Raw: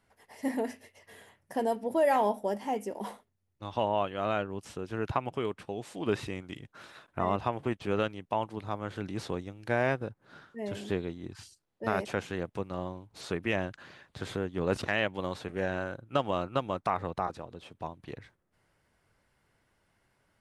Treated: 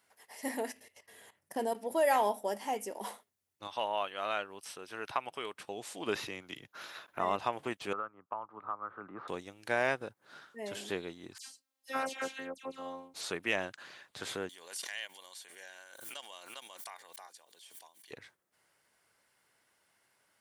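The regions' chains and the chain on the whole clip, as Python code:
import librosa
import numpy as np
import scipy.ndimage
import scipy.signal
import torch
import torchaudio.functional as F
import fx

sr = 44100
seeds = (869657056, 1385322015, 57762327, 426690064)

y = fx.chain(x, sr, fx.low_shelf(hz=390.0, db=8.0),
    fx.level_steps(step_db=14), at=(0.72, 1.75))
y = fx.chain(y, sr, fx.low_shelf(hz=490.0, db=-9.0),
    fx.notch(hz=7000.0, q=5.3), at=(3.67, 5.55))
y = fx.chain(y, sr, fx.peak_eq(hz=8300.0, db=-14.5, octaves=0.24),
    fx.band_squash(depth_pct=40), at=(6.15, 7.2))
y = fx.chain(y, sr, fx.ladder_lowpass(hz=1300.0, resonance_pct=80),
    fx.band_squash(depth_pct=100), at=(7.93, 9.28))
y = fx.chain(y, sr, fx.robotise(hz=266.0),
    fx.dispersion(late='lows', ms=85.0, hz=2400.0), at=(11.38, 13.14))
y = fx.chain(y, sr, fx.differentiator(),
    fx.notch_comb(f0_hz=1300.0),
    fx.pre_swell(db_per_s=43.0), at=(14.49, 18.11))
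y = fx.highpass(y, sr, hz=600.0, slope=6)
y = fx.high_shelf(y, sr, hz=4800.0, db=8.5)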